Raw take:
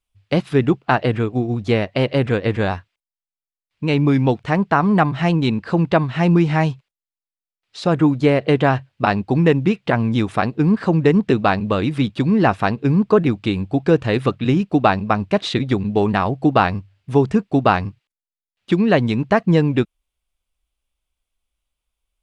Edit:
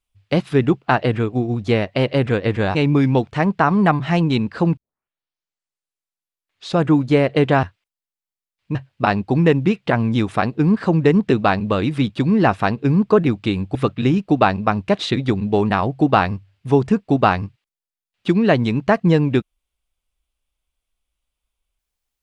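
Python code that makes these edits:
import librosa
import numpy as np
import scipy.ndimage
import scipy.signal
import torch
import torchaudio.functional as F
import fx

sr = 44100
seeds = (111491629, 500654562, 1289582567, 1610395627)

y = fx.edit(x, sr, fx.move(start_s=2.75, length_s=1.12, to_s=8.75),
    fx.tape_start(start_s=5.89, length_s=2.0),
    fx.cut(start_s=13.75, length_s=0.43), tone=tone)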